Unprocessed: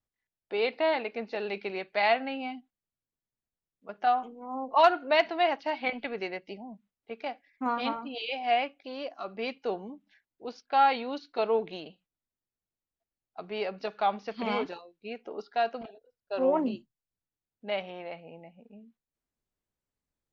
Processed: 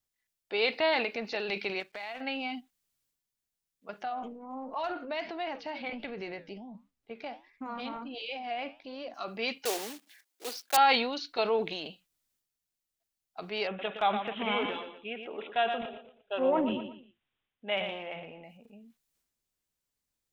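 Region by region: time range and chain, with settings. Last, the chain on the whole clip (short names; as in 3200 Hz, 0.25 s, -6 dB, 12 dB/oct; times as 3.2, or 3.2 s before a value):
1.8–2.21 G.711 law mismatch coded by A + high shelf 5000 Hz -10 dB + compressor, threshold -38 dBFS
4.03–9.14 tilt -2.5 dB/oct + compressor 2.5:1, threshold -29 dBFS + flange 1.4 Hz, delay 5.1 ms, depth 5.1 ms, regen -85%
9.65–10.78 block floating point 3-bit + HPF 280 Hz 24 dB/oct
13.67–18.44 feedback echo 0.118 s, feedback 33%, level -12 dB + careless resampling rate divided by 6×, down none, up filtered
whole clip: high shelf 2100 Hz +11.5 dB; transient shaper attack +1 dB, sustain +7 dB; gain -3 dB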